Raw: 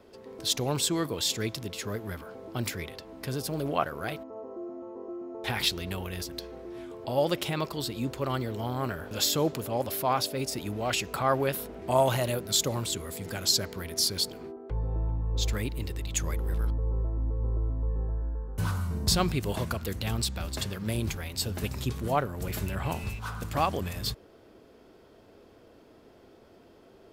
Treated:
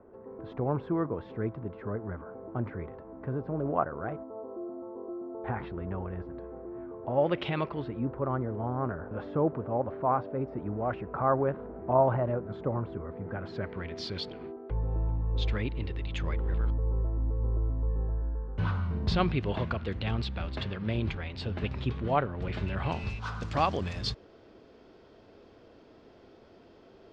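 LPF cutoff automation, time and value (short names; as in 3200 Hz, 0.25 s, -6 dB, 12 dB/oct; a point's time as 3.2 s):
LPF 24 dB/oct
7.03 s 1400 Hz
7.48 s 3400 Hz
8.12 s 1400 Hz
13.27 s 1400 Hz
14.04 s 3400 Hz
22.45 s 3400 Hz
23.25 s 5700 Hz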